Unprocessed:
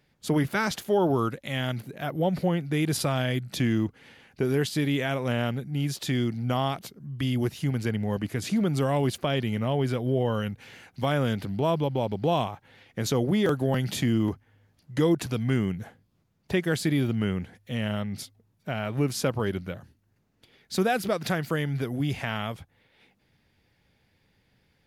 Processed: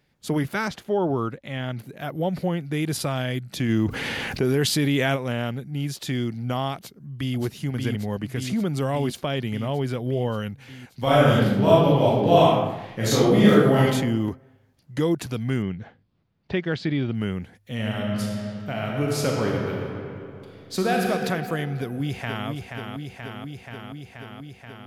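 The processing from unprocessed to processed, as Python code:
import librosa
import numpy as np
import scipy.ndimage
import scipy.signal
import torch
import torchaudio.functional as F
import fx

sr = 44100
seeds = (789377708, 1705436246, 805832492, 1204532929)

y = fx.lowpass(x, sr, hz=2400.0, slope=6, at=(0.68, 1.79))
y = fx.env_flatten(y, sr, amount_pct=70, at=(3.68, 5.15), fade=0.02)
y = fx.echo_throw(y, sr, start_s=6.76, length_s=0.61, ms=580, feedback_pct=75, wet_db=-3.0)
y = fx.reverb_throw(y, sr, start_s=11.02, length_s=2.81, rt60_s=0.98, drr_db=-8.5)
y = fx.lowpass(y, sr, hz=4600.0, slope=24, at=(15.62, 17.15))
y = fx.reverb_throw(y, sr, start_s=17.72, length_s=3.33, rt60_s=2.9, drr_db=-1.5)
y = fx.echo_throw(y, sr, start_s=21.78, length_s=0.7, ms=480, feedback_pct=80, wet_db=-5.5)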